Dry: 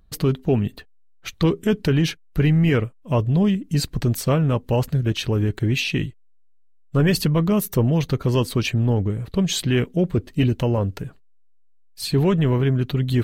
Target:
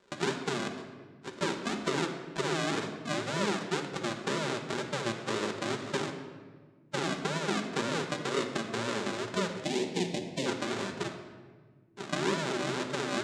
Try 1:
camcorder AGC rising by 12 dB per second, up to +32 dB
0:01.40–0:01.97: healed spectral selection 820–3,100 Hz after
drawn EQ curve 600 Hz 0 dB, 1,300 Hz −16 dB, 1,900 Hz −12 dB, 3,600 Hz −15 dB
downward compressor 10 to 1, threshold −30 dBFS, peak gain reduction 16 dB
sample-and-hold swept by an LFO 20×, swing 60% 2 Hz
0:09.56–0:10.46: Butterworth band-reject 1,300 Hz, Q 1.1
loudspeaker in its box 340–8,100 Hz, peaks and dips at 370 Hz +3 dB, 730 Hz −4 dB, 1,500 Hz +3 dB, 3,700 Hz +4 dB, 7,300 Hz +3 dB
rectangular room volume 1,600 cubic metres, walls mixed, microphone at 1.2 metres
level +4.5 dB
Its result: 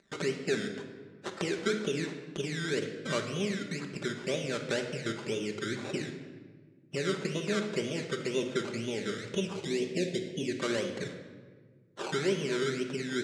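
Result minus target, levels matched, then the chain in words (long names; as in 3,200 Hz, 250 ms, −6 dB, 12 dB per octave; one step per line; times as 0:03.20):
sample-and-hold swept by an LFO: distortion −13 dB
camcorder AGC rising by 12 dB per second, up to +32 dB
0:01.40–0:01.97: healed spectral selection 820–3,100 Hz after
drawn EQ curve 600 Hz 0 dB, 1,300 Hz −16 dB, 1,900 Hz −12 dB, 3,600 Hz −15 dB
downward compressor 10 to 1, threshold −30 dBFS, peak gain reduction 16 dB
sample-and-hold swept by an LFO 76×, swing 60% 2 Hz
0:09.56–0:10.46: Butterworth band-reject 1,300 Hz, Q 1.1
loudspeaker in its box 340–8,100 Hz, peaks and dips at 370 Hz +3 dB, 730 Hz −4 dB, 1,500 Hz +3 dB, 3,700 Hz +4 dB, 7,300 Hz +3 dB
rectangular room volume 1,600 cubic metres, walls mixed, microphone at 1.2 metres
level +4.5 dB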